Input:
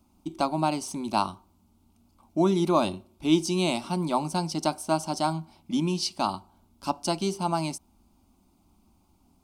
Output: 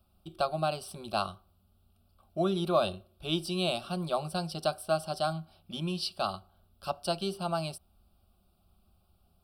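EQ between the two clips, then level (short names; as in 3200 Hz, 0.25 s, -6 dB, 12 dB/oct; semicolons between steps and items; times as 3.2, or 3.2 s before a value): fixed phaser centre 1400 Hz, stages 8; 0.0 dB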